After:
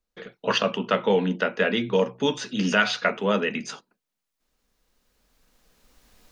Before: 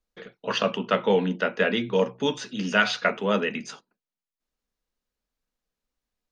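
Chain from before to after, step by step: recorder AGC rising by 10 dB/s

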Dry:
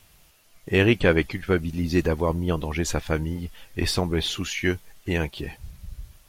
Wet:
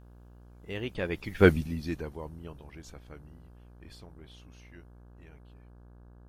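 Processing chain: Doppler pass-by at 1.48, 19 m/s, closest 1.1 m; buzz 60 Hz, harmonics 28, -57 dBFS -7 dB/oct; gain +4.5 dB

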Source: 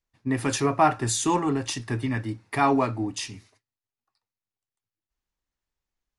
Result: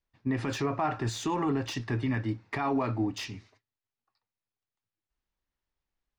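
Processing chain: limiter -20.5 dBFS, peak gain reduction 11.5 dB; Bessel low-pass 4300 Hz, order 4; slew limiter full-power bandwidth 87 Hz

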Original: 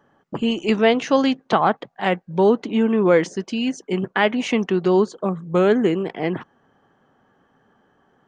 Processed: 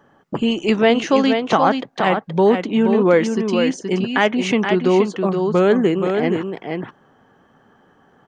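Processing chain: echo 0.474 s -6.5 dB; in parallel at -1 dB: compressor, threshold -27 dBFS, peak gain reduction 15.5 dB

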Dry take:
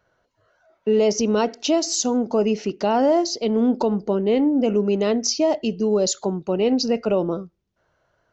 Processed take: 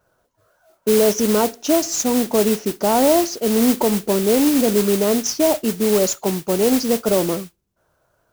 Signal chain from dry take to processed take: band shelf 3000 Hz -9 dB; modulation noise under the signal 10 dB; gain +2.5 dB

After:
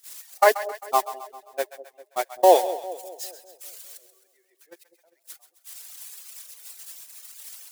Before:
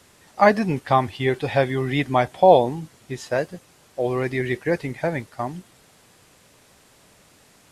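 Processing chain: switching spikes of -12 dBFS; elliptic high-pass 330 Hz, stop band 40 dB; gate -15 dBFS, range -39 dB; reverb removal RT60 1.6 s; split-band echo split 630 Hz, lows 0.2 s, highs 0.132 s, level -13.5 dB; gain -1 dB

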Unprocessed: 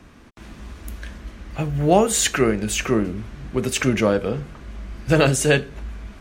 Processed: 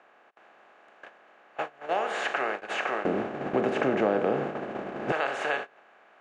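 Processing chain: per-bin compression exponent 0.4; HPF 930 Hz 12 dB/oct, from 3.05 s 250 Hz, from 5.12 s 1000 Hz; gate -21 dBFS, range -25 dB; LPF 1500 Hz 12 dB/oct; compressor 2:1, threshold -29 dBFS, peak gain reduction 10.5 dB

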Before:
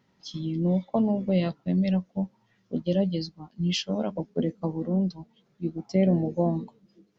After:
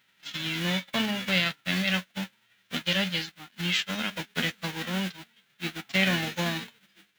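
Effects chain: spectral whitening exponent 0.3; band shelf 2300 Hz +12 dB; gain -6 dB

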